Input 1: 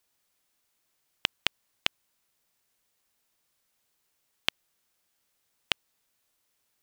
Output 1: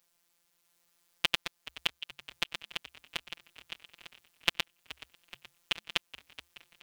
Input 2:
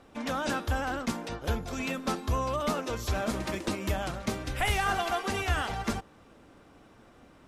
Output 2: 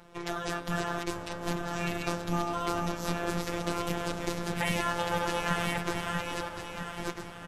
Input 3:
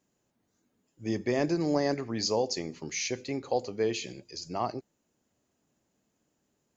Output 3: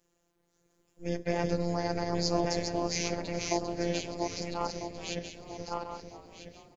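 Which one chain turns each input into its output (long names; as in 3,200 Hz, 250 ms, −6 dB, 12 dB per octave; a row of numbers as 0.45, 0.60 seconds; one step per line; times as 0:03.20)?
feedback delay that plays each chunk backwards 649 ms, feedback 42%, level −2.5 dB
in parallel at −0.5 dB: downward compressor, threshold −40 dBFS
on the sum: ring modulation 150 Hz
phases set to zero 172 Hz
echo with shifted repeats 425 ms, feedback 63%, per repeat −72 Hz, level −17 dB
level +1 dB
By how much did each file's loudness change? −3.0, −1.0, −2.0 LU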